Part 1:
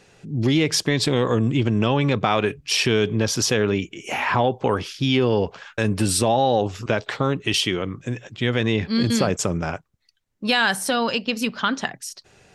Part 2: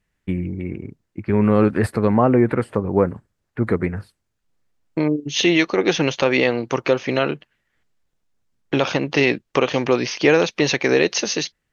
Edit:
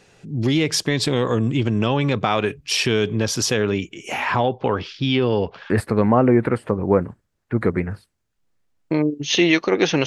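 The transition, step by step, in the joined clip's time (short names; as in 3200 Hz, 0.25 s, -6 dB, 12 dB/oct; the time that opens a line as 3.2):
part 1
4.47–5.7 LPF 4800 Hz 24 dB/oct
5.7 switch to part 2 from 1.76 s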